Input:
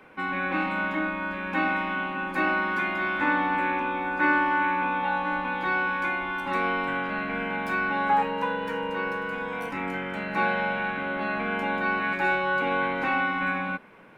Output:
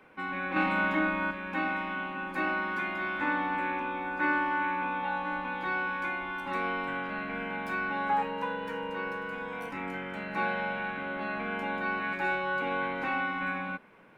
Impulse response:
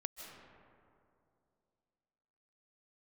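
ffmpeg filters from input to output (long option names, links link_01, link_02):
-filter_complex "[0:a]asettb=1/sr,asplit=3[link_01][link_02][link_03];[link_01]atrim=end=0.564[link_04];[link_02]atrim=start=0.56:end=1.31,asetpts=PTS-STARTPTS,afade=type=in:duration=0.004:curve=qsin,afade=type=out:start_time=0.746:duration=0.004:curve=qsin,acontrast=45[link_05];[link_03]atrim=start=1.306[link_06];[link_04][link_05]acrossfade=duration=0.004:curve1=hsin:curve2=qsin[link_07];[link_07][link_06]acrossfade=duration=0.004:curve1=qsin:curve2=hsin,volume=-5.5dB"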